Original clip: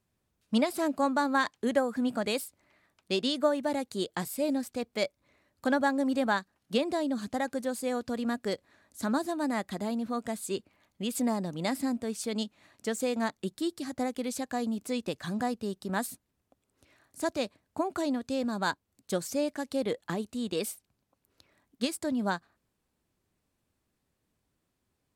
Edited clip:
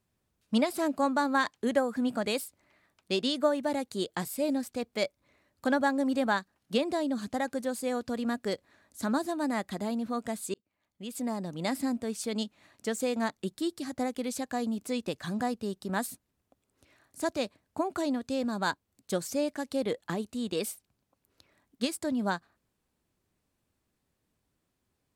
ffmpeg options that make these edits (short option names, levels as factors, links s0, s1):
-filter_complex "[0:a]asplit=2[s0][s1];[s0]atrim=end=10.54,asetpts=PTS-STARTPTS,afade=t=out:st=10.536:d=0.004:c=hsin[s2];[s1]atrim=start=10.54,asetpts=PTS-STARTPTS,afade=t=in:d=1.2[s3];[s2][s3]concat=n=2:v=0:a=1"